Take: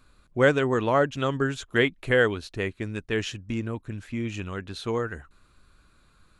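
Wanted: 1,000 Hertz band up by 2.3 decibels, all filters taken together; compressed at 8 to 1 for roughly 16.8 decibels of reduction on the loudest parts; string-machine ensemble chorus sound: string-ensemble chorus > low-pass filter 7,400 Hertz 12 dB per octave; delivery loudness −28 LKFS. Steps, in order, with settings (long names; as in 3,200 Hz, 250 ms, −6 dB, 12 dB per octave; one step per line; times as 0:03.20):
parametric band 1,000 Hz +3 dB
downward compressor 8 to 1, threshold −32 dBFS
string-ensemble chorus
low-pass filter 7,400 Hz 12 dB per octave
level +13 dB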